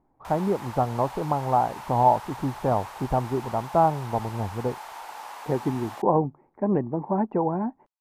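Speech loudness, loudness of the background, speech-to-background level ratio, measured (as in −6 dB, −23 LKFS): −26.0 LKFS, −40.0 LKFS, 14.0 dB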